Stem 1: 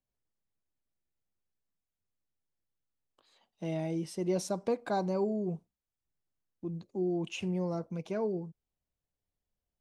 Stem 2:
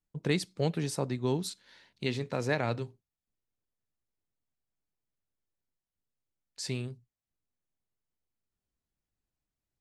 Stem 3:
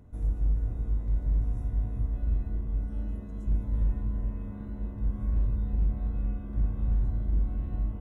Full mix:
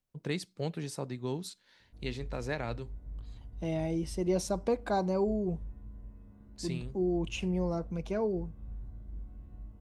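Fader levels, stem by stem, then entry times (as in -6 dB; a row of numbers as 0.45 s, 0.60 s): +1.5 dB, -5.5 dB, -16.5 dB; 0.00 s, 0.00 s, 1.80 s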